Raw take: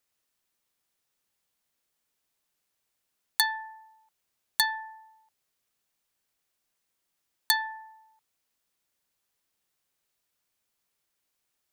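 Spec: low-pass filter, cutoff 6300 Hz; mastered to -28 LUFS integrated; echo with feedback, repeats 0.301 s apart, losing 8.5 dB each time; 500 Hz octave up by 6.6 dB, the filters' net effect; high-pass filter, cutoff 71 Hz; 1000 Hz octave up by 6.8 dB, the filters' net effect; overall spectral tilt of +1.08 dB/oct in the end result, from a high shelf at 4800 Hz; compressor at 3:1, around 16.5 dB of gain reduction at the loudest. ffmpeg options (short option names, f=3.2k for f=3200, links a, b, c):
-af "highpass=71,lowpass=6.3k,equalizer=f=500:t=o:g=6.5,equalizer=f=1k:t=o:g=5.5,highshelf=f=4.8k:g=7.5,acompressor=threshold=-41dB:ratio=3,aecho=1:1:301|602|903|1204:0.376|0.143|0.0543|0.0206,volume=15dB"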